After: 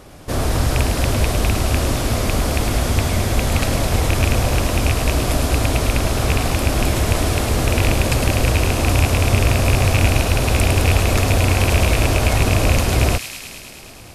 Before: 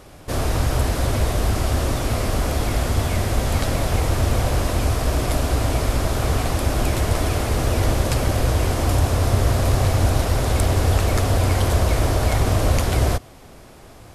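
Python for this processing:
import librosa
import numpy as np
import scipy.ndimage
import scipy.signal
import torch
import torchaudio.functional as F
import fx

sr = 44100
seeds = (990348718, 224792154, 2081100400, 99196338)

y = fx.rattle_buzz(x, sr, strikes_db=-14.0, level_db=-10.0)
y = fx.peak_eq(y, sr, hz=220.0, db=2.5, octaves=0.94)
y = fx.echo_wet_highpass(y, sr, ms=106, feedback_pct=79, hz=2700.0, wet_db=-4.5)
y = F.gain(torch.from_numpy(y), 2.0).numpy()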